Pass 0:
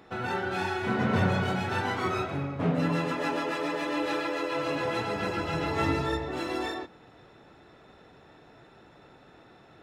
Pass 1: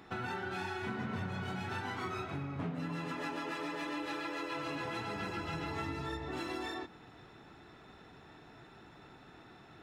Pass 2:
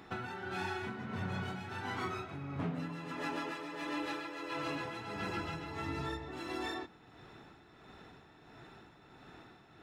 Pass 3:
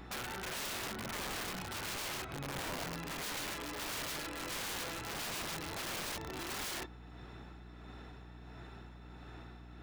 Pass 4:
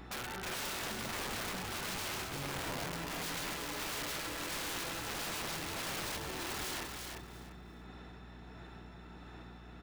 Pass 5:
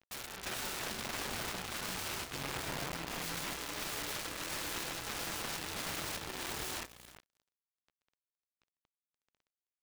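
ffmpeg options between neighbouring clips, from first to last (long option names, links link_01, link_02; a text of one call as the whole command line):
ffmpeg -i in.wav -af "equalizer=frequency=540:width_type=o:width=0.55:gain=-8,acompressor=threshold=-36dB:ratio=6" out.wav
ffmpeg -i in.wav -af "tremolo=f=1.5:d=0.52,volume=1.5dB" out.wav
ffmpeg -i in.wav -af "aeval=exprs='val(0)+0.00251*(sin(2*PI*60*n/s)+sin(2*PI*2*60*n/s)/2+sin(2*PI*3*60*n/s)/3+sin(2*PI*4*60*n/s)/4+sin(2*PI*5*60*n/s)/5)':channel_layout=same,aeval=exprs='(mod(63.1*val(0)+1,2)-1)/63.1':channel_layout=same,volume=1dB" out.wav
ffmpeg -i in.wav -af "aecho=1:1:345|690|1035:0.562|0.118|0.0248" out.wav
ffmpeg -i in.wav -af "acrusher=bits=5:mix=0:aa=0.5" out.wav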